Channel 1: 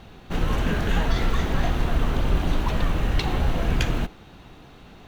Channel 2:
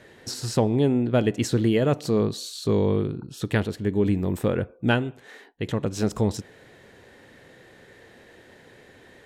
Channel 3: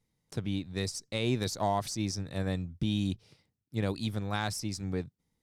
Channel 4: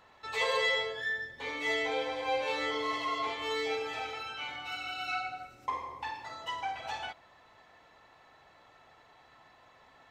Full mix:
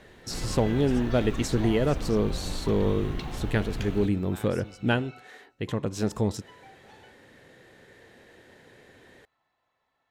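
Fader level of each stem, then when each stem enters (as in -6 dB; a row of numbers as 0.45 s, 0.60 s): -11.5 dB, -3.0 dB, -12.5 dB, -17.5 dB; 0.00 s, 0.00 s, 0.00 s, 0.00 s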